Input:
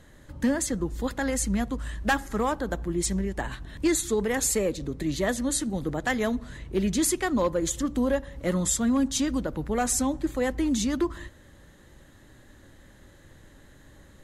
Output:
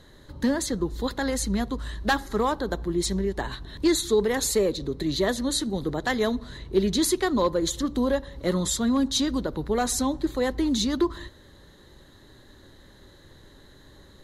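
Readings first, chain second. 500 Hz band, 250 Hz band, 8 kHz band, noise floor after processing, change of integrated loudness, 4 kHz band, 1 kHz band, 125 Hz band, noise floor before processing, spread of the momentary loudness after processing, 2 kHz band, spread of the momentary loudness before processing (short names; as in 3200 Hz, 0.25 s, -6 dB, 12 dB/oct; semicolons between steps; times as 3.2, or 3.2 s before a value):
+3.0 dB, +1.0 dB, -2.0 dB, -52 dBFS, +1.5 dB, +6.5 dB, +2.0 dB, 0.0 dB, -53 dBFS, 6 LU, 0.0 dB, 6 LU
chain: thirty-one-band EQ 400 Hz +7 dB, 1000 Hz +4 dB, 2500 Hz -5 dB, 4000 Hz +12 dB, 8000 Hz -5 dB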